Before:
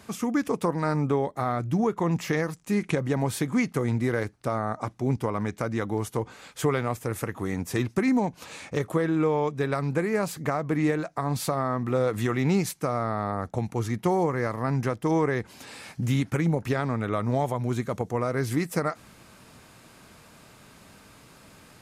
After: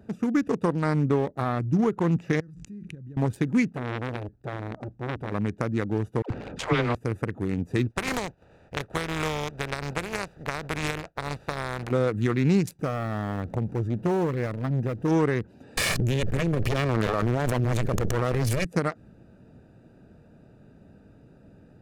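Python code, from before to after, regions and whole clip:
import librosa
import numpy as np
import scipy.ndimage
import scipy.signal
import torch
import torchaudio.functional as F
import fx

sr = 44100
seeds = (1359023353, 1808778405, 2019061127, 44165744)

y = fx.chain(x, sr, fx.tone_stack(knobs='6-0-2'),
    fx.pre_swell(db_per_s=29.0), at=(2.4, 3.17))
y = fx.chain(y, sr, fx.low_shelf(hz=69.0, db=11.0),
    fx.transformer_sat(knee_hz=1600.0), at=(3.75, 5.32))
y = fx.chain(y, sr, fx.spacing_loss(db_at_10k=29),
    fx.dispersion(late='lows', ms=83.0, hz=570.0),
    fx.spectral_comp(ratio=2.0), at=(6.22, 6.95))
y = fx.spec_flatten(y, sr, power=0.36, at=(7.9, 11.9), fade=0.02)
y = fx.lowpass(y, sr, hz=1700.0, slope=6, at=(7.9, 11.9), fade=0.02)
y = fx.peak_eq(y, sr, hz=260.0, db=-9.0, octaves=1.4, at=(7.9, 11.9), fade=0.02)
y = fx.chain(y, sr, fx.zero_step(step_db=-40.5),
    fx.transformer_sat(knee_hz=460.0), at=(12.79, 15.08))
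y = fx.chain(y, sr, fx.lower_of_two(delay_ms=1.7),
    fx.env_flatten(amount_pct=100), at=(15.77, 18.65))
y = fx.wiener(y, sr, points=41)
y = fx.dynamic_eq(y, sr, hz=720.0, q=1.2, threshold_db=-37.0, ratio=4.0, max_db=-4)
y = y * librosa.db_to_amplitude(3.0)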